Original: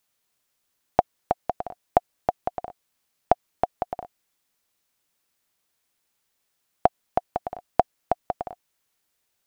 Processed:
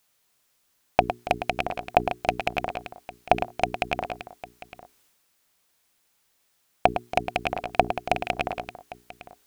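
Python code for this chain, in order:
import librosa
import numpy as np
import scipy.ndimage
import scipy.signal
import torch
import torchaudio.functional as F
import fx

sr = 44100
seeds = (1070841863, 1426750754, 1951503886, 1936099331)

p1 = fx.rattle_buzz(x, sr, strikes_db=-36.0, level_db=-9.0)
p2 = fx.hum_notches(p1, sr, base_hz=60, count=7)
p3 = p2 + fx.echo_multitap(p2, sr, ms=(108, 280, 802), db=(-19.0, -16.5, -17.0), dry=0)
p4 = fx.transient(p3, sr, attack_db=-6, sustain_db=5)
y = p4 * 10.0 ** (6.0 / 20.0)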